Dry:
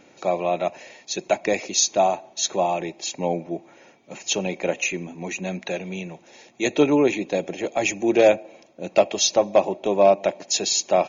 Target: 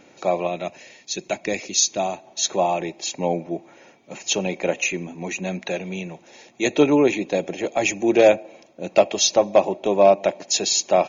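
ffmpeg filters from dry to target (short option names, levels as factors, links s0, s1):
-filter_complex "[0:a]asettb=1/sr,asplit=3[s0][s1][s2];[s0]atrim=end=0.474[s3];[s1]atrim=start=0.47:end=2.27,asetpts=PTS-STARTPTS,afade=t=in:d=0.004:c=qsin,afade=t=out:st=1.796:d=0.004:c=qsin,equalizer=f=800:w=0.61:g=-7.5[s4];[s2]atrim=start=2.266[s5];[s3][s4]acrossfade=d=0.004:c1=hsin:c2=qsin[s6];[s6][s5]acrossfade=d=0.004:c1=qsin:c2=hsin,volume=1.19"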